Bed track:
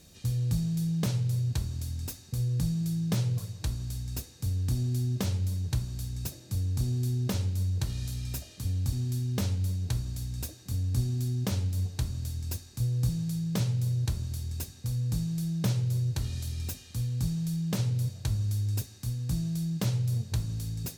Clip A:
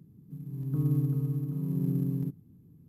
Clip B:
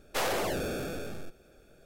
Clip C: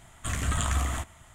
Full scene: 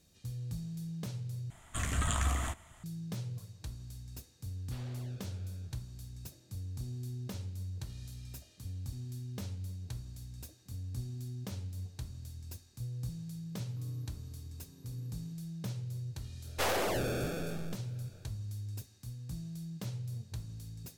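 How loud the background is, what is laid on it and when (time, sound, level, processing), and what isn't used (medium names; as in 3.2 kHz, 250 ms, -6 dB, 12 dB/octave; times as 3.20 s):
bed track -11.5 dB
1.50 s: replace with C -4 dB
4.56 s: add B -17.5 dB + four-pole ladder low-pass 5 kHz, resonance 40%
13.03 s: add A -12.5 dB + high-pass 960 Hz 6 dB/octave
16.44 s: add B -1.5 dB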